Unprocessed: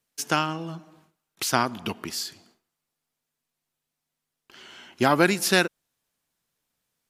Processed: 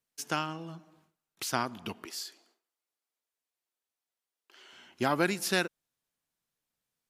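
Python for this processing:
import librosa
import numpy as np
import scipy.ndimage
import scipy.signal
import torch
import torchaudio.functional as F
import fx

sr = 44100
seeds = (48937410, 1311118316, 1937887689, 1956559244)

y = fx.highpass(x, sr, hz=320.0, slope=24, at=(2.05, 4.73))
y = y * librosa.db_to_amplitude(-8.0)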